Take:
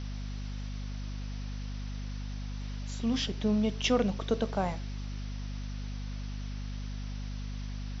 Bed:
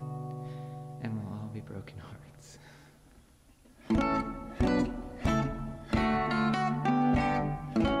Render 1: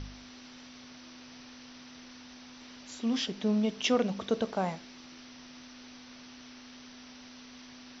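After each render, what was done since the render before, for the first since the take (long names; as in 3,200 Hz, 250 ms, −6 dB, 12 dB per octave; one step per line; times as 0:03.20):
hum removal 50 Hz, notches 4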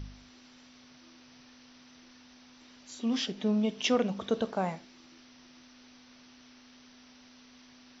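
noise reduction from a noise print 6 dB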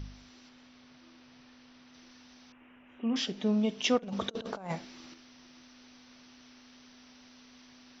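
0:00.49–0:01.94: high-frequency loss of the air 110 metres
0:02.52–0:03.16: elliptic low-pass filter 2,800 Hz
0:03.97–0:05.14: compressor whose output falls as the input rises −36 dBFS, ratio −0.5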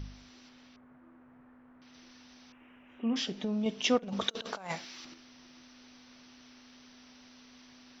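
0:00.76–0:01.82: low-pass filter 1,600 Hz 24 dB per octave
0:03.13–0:03.66: downward compressor, threshold −29 dBFS
0:04.21–0:05.05: tilt shelving filter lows −7 dB, about 830 Hz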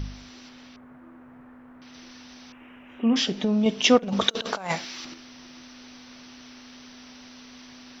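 level +9.5 dB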